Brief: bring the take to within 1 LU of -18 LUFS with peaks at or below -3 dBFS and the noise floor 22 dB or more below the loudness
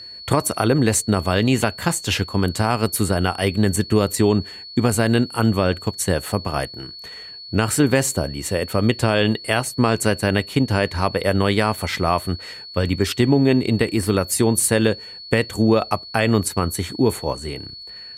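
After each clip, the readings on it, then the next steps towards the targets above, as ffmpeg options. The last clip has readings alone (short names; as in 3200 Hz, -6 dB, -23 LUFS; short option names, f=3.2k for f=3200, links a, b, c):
steady tone 4400 Hz; tone level -35 dBFS; loudness -20.0 LUFS; peak -1.5 dBFS; loudness target -18.0 LUFS
-> -af "bandreject=f=4.4k:w=30"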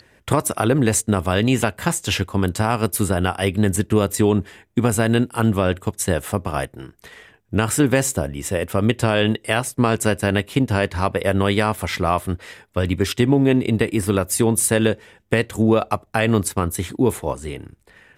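steady tone none; loudness -20.0 LUFS; peak -1.5 dBFS; loudness target -18.0 LUFS
-> -af "volume=2dB,alimiter=limit=-3dB:level=0:latency=1"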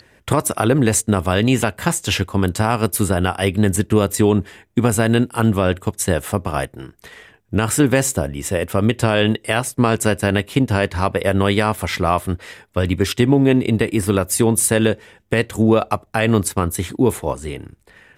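loudness -18.5 LUFS; peak -3.0 dBFS; noise floor -55 dBFS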